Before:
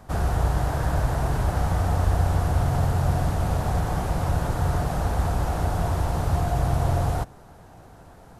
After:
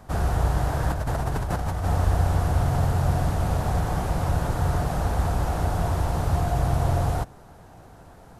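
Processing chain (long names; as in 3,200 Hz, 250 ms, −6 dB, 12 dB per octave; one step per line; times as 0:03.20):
0:00.90–0:01.86: compressor whose output falls as the input rises −26 dBFS, ratio −1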